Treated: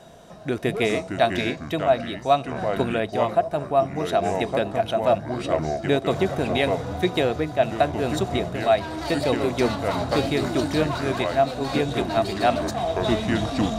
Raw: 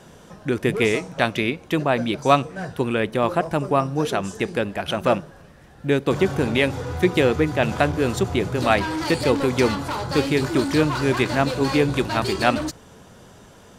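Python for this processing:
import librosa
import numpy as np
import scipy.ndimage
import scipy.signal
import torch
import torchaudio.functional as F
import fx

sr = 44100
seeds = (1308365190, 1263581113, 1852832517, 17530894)

y = fx.echo_pitch(x, sr, ms=289, semitones=-4, count=3, db_per_echo=-6.0)
y = fx.small_body(y, sr, hz=(670.0, 3800.0), ring_ms=45, db=15)
y = fx.rider(y, sr, range_db=10, speed_s=0.5)
y = y * librosa.db_to_amplitude(-6.0)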